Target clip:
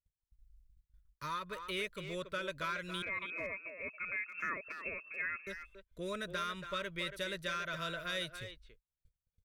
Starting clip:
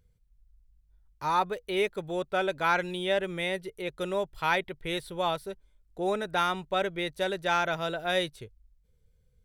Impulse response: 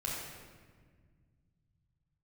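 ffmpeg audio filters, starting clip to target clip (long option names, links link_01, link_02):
-filter_complex "[0:a]agate=range=-30dB:threshold=-60dB:ratio=16:detection=peak,equalizer=frequency=390:width_type=o:width=1.8:gain=-10,acompressor=threshold=-32dB:ratio=4,asoftclip=type=tanh:threshold=-25.5dB,asettb=1/sr,asplit=3[link_01][link_02][link_03];[link_01]atrim=end=3.024[link_04];[link_02]atrim=start=3.02:end=5.47,asetpts=PTS-STARTPTS,afade=type=in:duration=0.004:curve=qsin,afade=type=out:start_time=2.446:duration=0.004:curve=qsin,lowpass=frequency=2300:width_type=q:width=0.5098,lowpass=frequency=2300:width_type=q:width=0.6013,lowpass=frequency=2300:width_type=q:width=0.9,lowpass=frequency=2300:width_type=q:width=2.563,afreqshift=-2700[link_05];[link_03]atrim=start=5.466[link_06];[link_04][link_05]acrossfade=duration=0.004:curve1=hsin:curve2=qsin[link_07];[link_07][link_06]acrossfade=duration=0.004:curve1=qsin:curve2=hsin,asuperstop=centerf=800:order=8:qfactor=2.5,asplit=2[link_08][link_09];[link_09]adelay=280,highpass=300,lowpass=3400,asoftclip=type=hard:threshold=-32.5dB,volume=-8dB[link_10];[link_08][link_10]amix=inputs=2:normalize=0,volume=-1dB"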